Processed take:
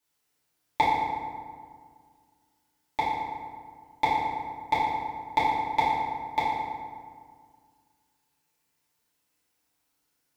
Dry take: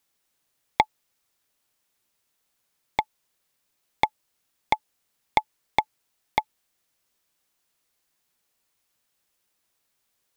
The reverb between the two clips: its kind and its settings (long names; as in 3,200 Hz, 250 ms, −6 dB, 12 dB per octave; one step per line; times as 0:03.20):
feedback delay network reverb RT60 1.9 s, low-frequency decay 1.25×, high-frequency decay 0.55×, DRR −10 dB
level −10 dB